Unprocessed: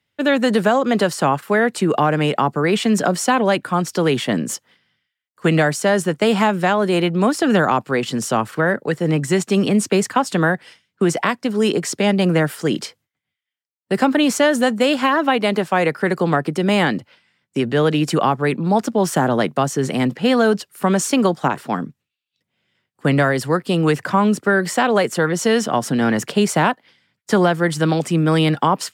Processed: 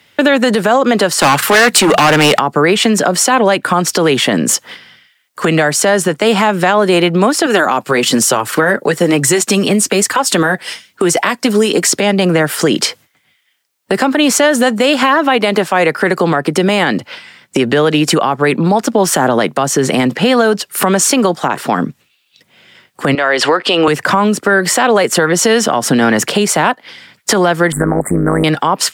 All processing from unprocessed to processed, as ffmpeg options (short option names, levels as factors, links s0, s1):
-filter_complex "[0:a]asettb=1/sr,asplit=3[s0][s1][s2];[s0]atrim=end=1.194[s3];[s1]atrim=start=1.19:end=2.39,asetpts=PTS-STARTPTS,afade=t=in:d=0.004:c=qsin,afade=t=out:st=1.196:d=0.004:c=qsin,tiltshelf=f=1200:g=-4,bandreject=f=60:t=h:w=6,bandreject=f=120:t=h:w=6,bandreject=f=180:t=h:w=6,asoftclip=type=hard:threshold=0.0794[s4];[s2]atrim=start=2.386[s5];[s3][s4]acrossfade=d=0.004:c1=hsin:c2=qsin[s6];[s6][s5]acrossfade=d=0.004:c1=qsin:c2=hsin,asettb=1/sr,asplit=3[s7][s8][s9];[s7]atrim=end=7.464[s10];[s8]atrim=start=7.46:end=11.91,asetpts=PTS-STARTPTS,afade=t=in:d=0.004:c=qsin,afade=t=out:st=4.446:d=0.004:c=qsin,highshelf=f=5800:g=8.5,flanger=delay=1.9:depth=3.6:regen=-50:speed=1.1:shape=triangular[s11];[s9]atrim=start=11.906[s12];[s10][s11]acrossfade=d=0.004:c1=hsin:c2=qsin[s13];[s13][s12]acrossfade=d=0.004:c1=qsin:c2=hsin,asettb=1/sr,asplit=3[s14][s15][s16];[s14]atrim=end=23.154[s17];[s15]atrim=start=23.15:end=23.88,asetpts=PTS-STARTPTS,afade=t=in:d=0.004:c=qsin,afade=t=out:st=0.726:d=0.004:c=qsin,highpass=430,lowpass=4600,equalizer=f=2900:w=2.6:g=4.5,acompressor=threshold=0.0316:ratio=2:attack=3.2:release=140:knee=1:detection=peak[s18];[s16]atrim=start=23.876[s19];[s17][s18]acrossfade=d=0.004:c1=hsin:c2=qsin[s20];[s20][s19]acrossfade=d=0.004:c1=qsin:c2=hsin,asettb=1/sr,asplit=3[s21][s22][s23];[s21]atrim=end=27.724[s24];[s22]atrim=start=27.72:end=28.44,asetpts=PTS-STARTPTS,afade=t=in:d=0.004:c=qsin,afade=t=out:st=0.716:d=0.004:c=qsin,bass=f=250:g=4,treble=f=4000:g=2,tremolo=f=99:d=0.824,asuperstop=centerf=4100:order=20:qfactor=0.73[s25];[s23]atrim=start=28.436[s26];[s24][s25]acrossfade=d=0.004:c1=hsin:c2=qsin[s27];[s27][s26]acrossfade=d=0.004:c1=qsin:c2=hsin,acompressor=threshold=0.0316:ratio=12,lowshelf=f=200:g=-10.5,alimiter=level_in=21.1:limit=0.891:release=50:level=0:latency=1,volume=0.891"